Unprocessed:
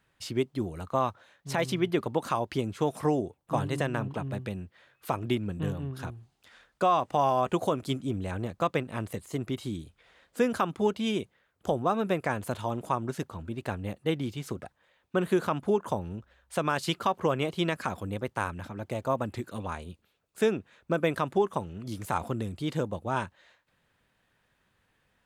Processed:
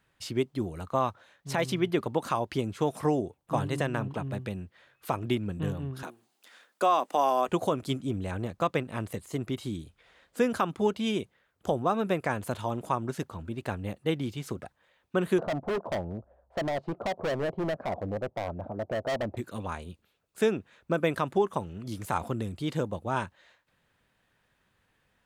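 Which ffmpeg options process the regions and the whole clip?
-filter_complex "[0:a]asettb=1/sr,asplit=3[a][b][c];[a]atrim=end=6.034[d];[b]atrim=start=6.03:end=7.48,asetpts=PTS-STARTPTS,afade=t=in:d=0.004:c=qsin,afade=t=out:st=1.446:d=0.004:c=qsin,highpass=f=240:w=0.5412,highpass=f=240:w=1.3066,highshelf=f=8.6k:g=11[e];[c]atrim=start=7.476[f];[d][e]acrossfade=d=0.004:c1=hsin:c2=qsin[g];[g][f]acrossfade=d=0.004:c1=qsin:c2=hsin,asettb=1/sr,asplit=3[h][i][j];[h]atrim=end=15.384[k];[i]atrim=start=15.38:end=19.37,asetpts=PTS-STARTPTS,afade=t=in:d=0.004:c=qsin,afade=t=out:st=3.986:d=0.004:c=qsin,lowpass=f=660:t=q:w=4.1,volume=27dB,asoftclip=hard,volume=-27dB[l];[j]atrim=start=19.366[m];[k][l]acrossfade=d=0.004:c1=hsin:c2=qsin[n];[n][m]acrossfade=d=0.004:c1=qsin:c2=hsin"

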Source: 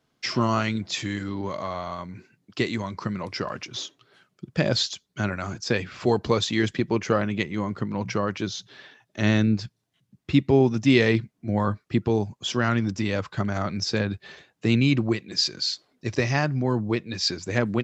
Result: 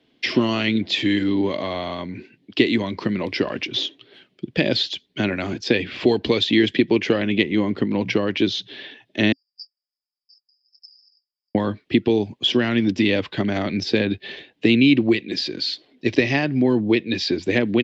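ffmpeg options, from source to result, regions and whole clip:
-filter_complex "[0:a]asettb=1/sr,asplit=3[a][b][c];[a]atrim=end=9.324[d];[b]atrim=start=9.32:end=11.55,asetpts=PTS-STARTPTS,afade=t=in:d=0.004:c=qsin,afade=t=out:st=2.226:d=0.004:c=qsin,aecho=1:1:5.3:0.52,atrim=end_sample=98343,acompressor=threshold=-27dB:ratio=3:attack=3.2:release=140:knee=1:detection=peak,asuperpass=centerf=5000:order=20:qfactor=7.2[e];[c]atrim=start=11.546[f];[d][e]acrossfade=d=0.004:c1=hsin:c2=qsin[g];[g][f]acrossfade=d=0.004:c1=qsin:c2=hsin,equalizer=f=1.7k:w=0.46:g=7,acrossover=split=120|1600[h][i][j];[h]acompressor=threshold=-40dB:ratio=4[k];[i]acompressor=threshold=-24dB:ratio=4[l];[j]acompressor=threshold=-26dB:ratio=4[m];[k][l][m]amix=inputs=3:normalize=0,firequalizer=gain_entry='entry(160,0);entry(270,11);entry(570,2);entry(1300,-12);entry(1800,-1);entry(3200,7);entry(6500,-10)':delay=0.05:min_phase=1,volume=2.5dB"

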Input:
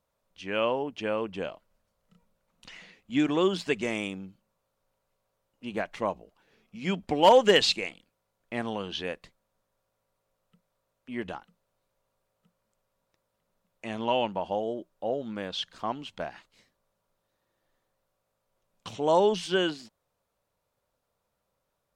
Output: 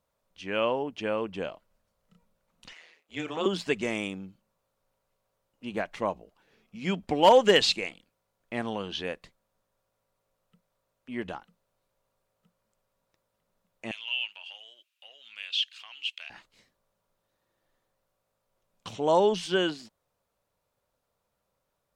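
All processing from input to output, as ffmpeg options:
-filter_complex "[0:a]asettb=1/sr,asplit=3[a][b][c];[a]atrim=end=2.734[d];[b]atrim=start=2.73:end=3.46,asetpts=PTS-STARTPTS,afade=t=in:d=0.004:c=qsin,afade=t=out:st=0.726:d=0.004:c=qsin,highpass=f=370:w=0.5412,highpass=f=370:w=1.3066,tremolo=f=160:d=0.824,asplit=2[e][f];[f]adelay=31,volume=-12dB[g];[e][g]amix=inputs=2:normalize=0,atrim=end_sample=32193[h];[c]atrim=start=3.456[i];[d][h]acrossfade=d=0.004:c1=hsin:c2=qsin[j];[j][i]acrossfade=d=0.004:c1=qsin:c2=hsin,asettb=1/sr,asplit=3[k][l][m];[k]atrim=end=13.914[n];[l]atrim=start=13.91:end=16.3,asetpts=PTS-STARTPTS,afade=t=in:d=0.004:c=qsin,afade=t=out:st=2.386:d=0.004:c=qsin,acompressor=threshold=-32dB:ratio=2.5:attack=3.2:release=140:knee=1:detection=peak,highpass=f=2.7k:t=q:w=5.6[o];[m]atrim=start=16.296[p];[n][o]acrossfade=d=0.004:c1=hsin:c2=qsin[q];[q][p]acrossfade=d=0.004:c1=qsin:c2=hsin"

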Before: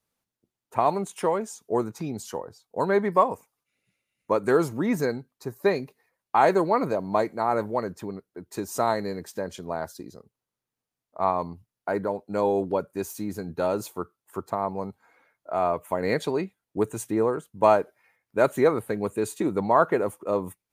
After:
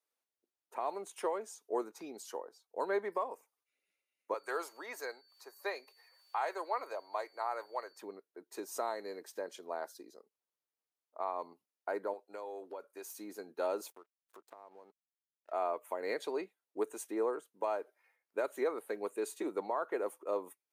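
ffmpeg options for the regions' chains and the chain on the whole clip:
-filter_complex "[0:a]asettb=1/sr,asplit=3[a][b][c];[a]atrim=end=4.344[d];[b]atrim=start=4.34:end=8.02,asetpts=PTS-STARTPTS,afade=t=in:d=0.004:c=qsin,afade=t=out:st=3.676:d=0.004:c=qsin,highpass=710,acompressor=mode=upward:threshold=-44dB:ratio=2.5:attack=3.2:release=140:knee=2.83:detection=peak,aeval=exprs='val(0)+0.00141*sin(2*PI*4500*n/s)':c=same[e];[c]atrim=start=8.016[f];[d][e]acrossfade=d=0.004:c1=hsin:c2=qsin[g];[g][f]acrossfade=d=0.004:c1=qsin:c2=hsin,asettb=1/sr,asplit=3[h][i][j];[h]atrim=end=12.134[k];[i]atrim=start=12.13:end=13.15,asetpts=PTS-STARTPTS,afade=t=in:d=0.004:c=qsin,afade=t=out:st=1.016:d=0.004:c=qsin,highpass=f=510:p=1,acompressor=threshold=-31dB:ratio=5:attack=3.2:release=140:knee=1:detection=peak[l];[j]atrim=start=13.146[m];[k][l]acrossfade=d=0.004:c1=hsin:c2=qsin[n];[n][m]acrossfade=d=0.004:c1=qsin:c2=hsin,asettb=1/sr,asplit=3[o][p][q];[o]atrim=end=13.904[r];[p]atrim=start=13.9:end=15.52,asetpts=PTS-STARTPTS,afade=t=in:d=0.004:c=qsin,afade=t=out:st=1.616:d=0.004:c=qsin,aeval=exprs='sgn(val(0))*max(abs(val(0))-0.00355,0)':c=same,acompressor=threshold=-41dB:ratio=6:attack=3.2:release=140:knee=1:detection=peak[s];[q]atrim=start=15.516[t];[r][s]acrossfade=d=0.004:c1=hsin:c2=qsin[u];[u][t]acrossfade=d=0.004:c1=qsin:c2=hsin,highpass=f=330:w=0.5412,highpass=f=330:w=1.3066,bandreject=f=7.3k:w=29,alimiter=limit=-15.5dB:level=0:latency=1:release=256,volume=-8.5dB"

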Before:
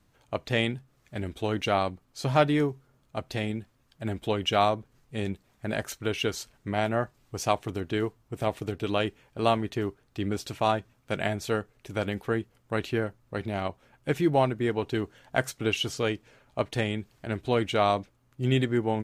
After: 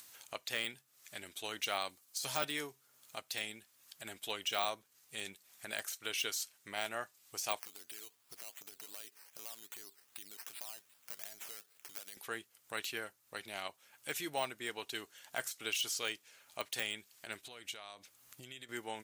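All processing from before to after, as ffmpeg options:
-filter_complex "[0:a]asettb=1/sr,asplit=3[a][b][c];[a]atrim=end=1.894[d];[b]atrim=start=1.89:end=2.45,asetpts=PTS-STARTPTS,afade=t=in:d=0.004:c=qsin,afade=t=out:st=0.556:d=0.004:c=qsin,bass=f=250:g=1,treble=f=4k:g=7,asplit=2[e][f];[f]adelay=14,volume=-11dB[g];[e][g]amix=inputs=2:normalize=0,atrim=end_sample=24696[h];[c]atrim=start=2.446[i];[d][h]acrossfade=d=0.004:c1=hsin:c2=qsin[j];[j][i]acrossfade=d=0.004:c1=qsin:c2=hsin,asettb=1/sr,asplit=3[k][l][m];[k]atrim=end=7.594[n];[l]atrim=start=7.59:end=12.17,asetpts=PTS-STARTPTS,afade=t=in:d=0.004:c=qsin,afade=t=out:st=4.576:d=0.004:c=qsin,highpass=f=150:p=1,acompressor=threshold=-41dB:ratio=5:attack=3.2:release=140:knee=1:detection=peak,acrusher=samples=10:mix=1:aa=0.000001:lfo=1:lforange=6:lforate=2.6[o];[m]atrim=start=12.166[p];[n][o]acrossfade=d=0.004:c1=hsin:c2=qsin[q];[q][p]acrossfade=d=0.004:c1=qsin:c2=hsin,asettb=1/sr,asplit=3[r][s][t];[r]atrim=end=17.464[u];[s]atrim=start=17.46:end=18.69,asetpts=PTS-STARTPTS,afade=t=in:d=0.004:c=qsin,afade=t=out:st=1.226:d=0.004:c=qsin,acompressor=threshold=-37dB:ratio=6:attack=3.2:release=140:knee=1:detection=peak,lowshelf=f=110:g=7[v];[t]atrim=start=18.686[w];[u][v]acrossfade=d=0.004:c1=hsin:c2=qsin[x];[x][w]acrossfade=d=0.004:c1=qsin:c2=hsin,deesser=0.9,aderivative,acompressor=mode=upward:threshold=-51dB:ratio=2.5,volume=6.5dB"

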